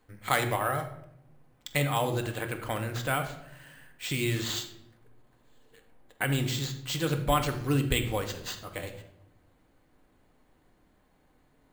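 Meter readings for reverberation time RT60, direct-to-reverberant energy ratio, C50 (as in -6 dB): 0.75 s, 5.0 dB, 9.5 dB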